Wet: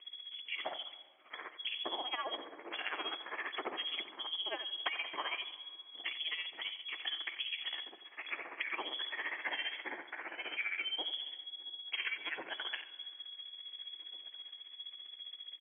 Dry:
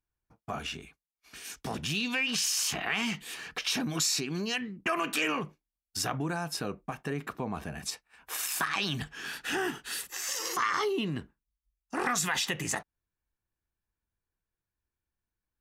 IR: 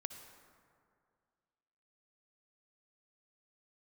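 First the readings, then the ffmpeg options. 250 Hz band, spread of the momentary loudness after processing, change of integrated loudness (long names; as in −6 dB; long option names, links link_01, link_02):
−20.0 dB, 9 LU, −8.0 dB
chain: -filter_complex "[0:a]aeval=exprs='val(0)+0.5*0.0133*sgn(val(0))':channel_layout=same,afwtdn=0.0112,equalizer=frequency=1300:width_type=o:width=0.4:gain=7.5,acompressor=threshold=-35dB:ratio=6,afreqshift=-110,tremolo=f=15:d=0.78,lowpass=frequency=2900:width_type=q:width=0.5098,lowpass=frequency=2900:width_type=q:width=0.6013,lowpass=frequency=2900:width_type=q:width=0.9,lowpass=frequency=2900:width_type=q:width=2.563,afreqshift=-3400,highpass=frequency=320:width_type=q:width=3.7,asplit=2[link_01][link_02];[link_02]adelay=1749,volume=-22dB,highshelf=frequency=4000:gain=-39.4[link_03];[link_01][link_03]amix=inputs=2:normalize=0,asplit=2[link_04][link_05];[1:a]atrim=start_sample=2205,adelay=91[link_06];[link_05][link_06]afir=irnorm=-1:irlink=0,volume=-9.5dB[link_07];[link_04][link_07]amix=inputs=2:normalize=0,volume=1.5dB"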